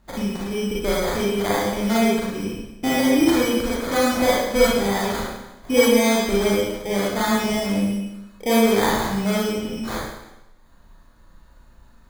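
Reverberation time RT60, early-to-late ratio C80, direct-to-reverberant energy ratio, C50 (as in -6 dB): 0.95 s, 2.0 dB, -6.5 dB, -2.5 dB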